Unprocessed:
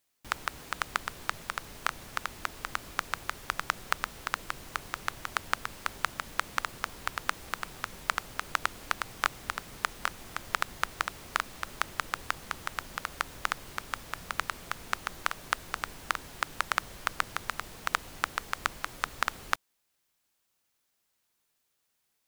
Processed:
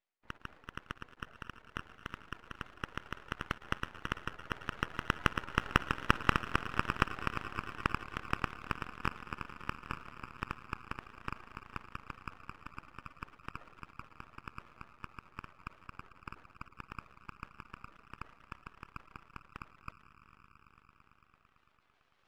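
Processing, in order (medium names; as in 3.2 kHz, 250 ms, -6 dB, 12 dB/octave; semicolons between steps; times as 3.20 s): Doppler pass-by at 6.13 s, 18 m/s, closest 17 m; reverse; upward compressor, threshold -44 dBFS; reverse; tone controls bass -9 dB, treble -13 dB; echo with a slow build-up 112 ms, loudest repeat 5, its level -18 dB; on a send at -22 dB: reverberation RT60 0.60 s, pre-delay 48 ms; on the sum: spectral gate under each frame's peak -10 dB strong; half-wave rectifier; trim +8 dB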